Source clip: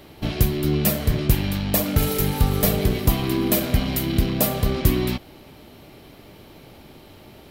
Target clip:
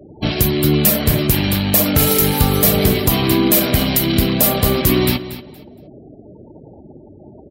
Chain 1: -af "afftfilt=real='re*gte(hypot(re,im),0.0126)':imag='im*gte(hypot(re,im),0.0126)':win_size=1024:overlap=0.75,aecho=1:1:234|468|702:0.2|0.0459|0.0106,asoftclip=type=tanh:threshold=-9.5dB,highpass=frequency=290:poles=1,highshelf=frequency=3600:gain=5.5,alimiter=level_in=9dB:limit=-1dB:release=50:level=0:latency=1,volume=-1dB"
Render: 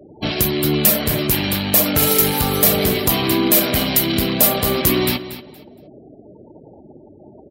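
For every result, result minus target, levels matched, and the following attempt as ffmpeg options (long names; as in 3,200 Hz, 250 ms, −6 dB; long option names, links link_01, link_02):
soft clipping: distortion +13 dB; 125 Hz band −5.0 dB
-af "afftfilt=real='re*gte(hypot(re,im),0.0126)':imag='im*gte(hypot(re,im),0.0126)':win_size=1024:overlap=0.75,aecho=1:1:234|468|702:0.2|0.0459|0.0106,asoftclip=type=tanh:threshold=-1.5dB,highpass=frequency=290:poles=1,highshelf=frequency=3600:gain=5.5,alimiter=level_in=9dB:limit=-1dB:release=50:level=0:latency=1,volume=-1dB"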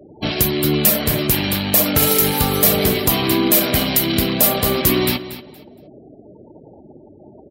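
125 Hz band −4.5 dB
-af "afftfilt=real='re*gte(hypot(re,im),0.0126)':imag='im*gte(hypot(re,im),0.0126)':win_size=1024:overlap=0.75,aecho=1:1:234|468|702:0.2|0.0459|0.0106,asoftclip=type=tanh:threshold=-1.5dB,highpass=frequency=100:poles=1,highshelf=frequency=3600:gain=5.5,alimiter=level_in=9dB:limit=-1dB:release=50:level=0:latency=1,volume=-1dB"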